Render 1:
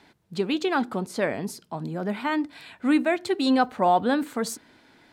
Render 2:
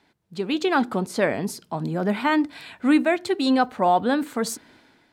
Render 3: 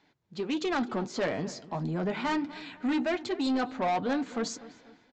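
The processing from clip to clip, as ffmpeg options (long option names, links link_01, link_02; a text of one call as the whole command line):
ffmpeg -i in.wav -af "dynaudnorm=framelen=190:gausssize=5:maxgain=13dB,volume=-7dB" out.wav
ffmpeg -i in.wav -filter_complex "[0:a]flanger=delay=6.2:depth=2.7:regen=-45:speed=1.5:shape=triangular,aresample=16000,asoftclip=type=tanh:threshold=-24dB,aresample=44100,asplit=2[link_01][link_02];[link_02]adelay=247,lowpass=frequency=2300:poles=1,volume=-17dB,asplit=2[link_03][link_04];[link_04]adelay=247,lowpass=frequency=2300:poles=1,volume=0.42,asplit=2[link_05][link_06];[link_06]adelay=247,lowpass=frequency=2300:poles=1,volume=0.42,asplit=2[link_07][link_08];[link_08]adelay=247,lowpass=frequency=2300:poles=1,volume=0.42[link_09];[link_01][link_03][link_05][link_07][link_09]amix=inputs=5:normalize=0" out.wav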